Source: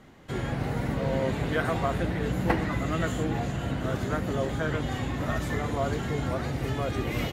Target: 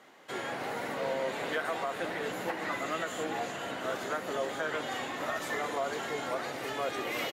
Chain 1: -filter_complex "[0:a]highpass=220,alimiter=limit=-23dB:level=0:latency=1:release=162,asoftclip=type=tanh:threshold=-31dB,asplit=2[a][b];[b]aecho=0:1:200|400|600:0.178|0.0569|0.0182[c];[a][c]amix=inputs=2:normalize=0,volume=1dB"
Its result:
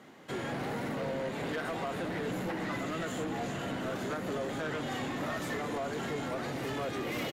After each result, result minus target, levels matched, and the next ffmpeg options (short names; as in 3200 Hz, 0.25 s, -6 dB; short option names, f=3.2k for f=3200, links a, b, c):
soft clip: distortion +19 dB; 250 Hz band +6.5 dB
-filter_complex "[0:a]highpass=220,alimiter=limit=-23dB:level=0:latency=1:release=162,asoftclip=type=tanh:threshold=-19dB,asplit=2[a][b];[b]aecho=0:1:200|400|600:0.178|0.0569|0.0182[c];[a][c]amix=inputs=2:normalize=0,volume=1dB"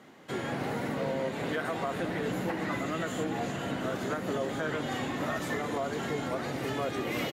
250 Hz band +6.5 dB
-filter_complex "[0:a]highpass=490,alimiter=limit=-23dB:level=0:latency=1:release=162,asoftclip=type=tanh:threshold=-19dB,asplit=2[a][b];[b]aecho=0:1:200|400|600:0.178|0.0569|0.0182[c];[a][c]amix=inputs=2:normalize=0,volume=1dB"